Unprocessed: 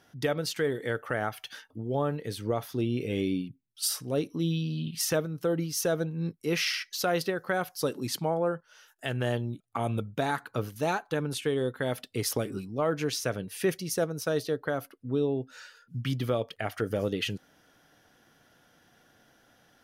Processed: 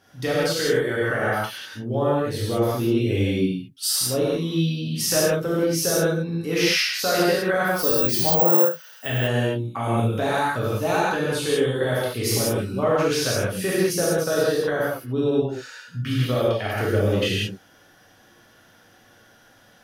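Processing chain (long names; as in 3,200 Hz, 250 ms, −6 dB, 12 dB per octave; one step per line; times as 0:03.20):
0:07.67–0:09.07: bad sample-rate conversion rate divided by 2×, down none, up zero stuff
reverb whose tail is shaped and stops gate 220 ms flat, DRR −8 dB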